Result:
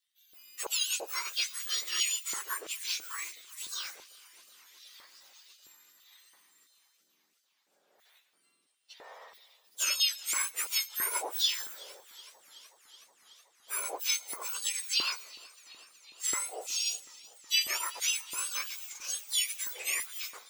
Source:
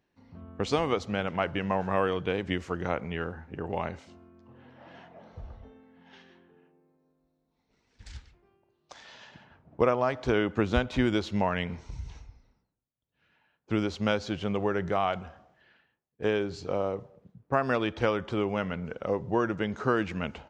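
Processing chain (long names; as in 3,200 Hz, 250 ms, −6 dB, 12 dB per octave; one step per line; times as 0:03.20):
frequency axis turned over on the octave scale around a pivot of 1,800 Hz
auto-filter high-pass square 1.5 Hz 340–3,300 Hz
feedback echo with a swinging delay time 372 ms, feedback 77%, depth 74 cents, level −22 dB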